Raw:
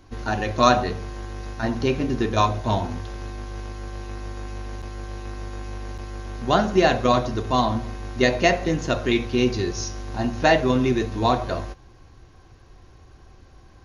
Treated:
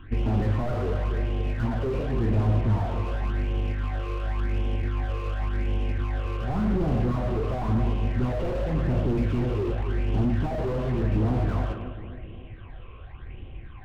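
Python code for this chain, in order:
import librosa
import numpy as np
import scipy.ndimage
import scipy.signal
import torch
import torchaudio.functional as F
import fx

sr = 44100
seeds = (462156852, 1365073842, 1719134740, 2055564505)

p1 = fx.cvsd(x, sr, bps=16000)
p2 = fx.dynamic_eq(p1, sr, hz=2300.0, q=1.8, threshold_db=-44.0, ratio=4.0, max_db=-5)
p3 = fx.over_compress(p2, sr, threshold_db=-28.0, ratio=-1.0)
p4 = p2 + (p3 * 10.0 ** (-2.5 / 20.0))
p5 = fx.phaser_stages(p4, sr, stages=8, low_hz=220.0, high_hz=1600.0, hz=0.91, feedback_pct=45)
p6 = p5 + fx.echo_split(p5, sr, split_hz=570.0, low_ms=271, high_ms=115, feedback_pct=52, wet_db=-11.0, dry=0)
y = fx.slew_limit(p6, sr, full_power_hz=20.0)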